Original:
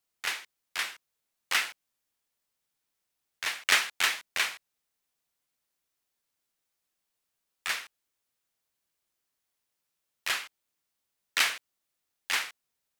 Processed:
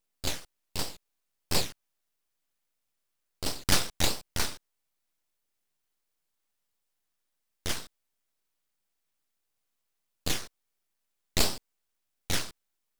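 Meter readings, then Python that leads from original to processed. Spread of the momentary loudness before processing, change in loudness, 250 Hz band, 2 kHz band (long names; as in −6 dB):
15 LU, −2.0 dB, +17.5 dB, −9.5 dB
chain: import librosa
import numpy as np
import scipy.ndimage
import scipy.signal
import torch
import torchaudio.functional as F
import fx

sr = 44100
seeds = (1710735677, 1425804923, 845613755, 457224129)

y = fx.phaser_stages(x, sr, stages=8, low_hz=530.0, high_hz=1300.0, hz=1.5, feedback_pct=25)
y = np.abs(y)
y = y * 10.0 ** (5.0 / 20.0)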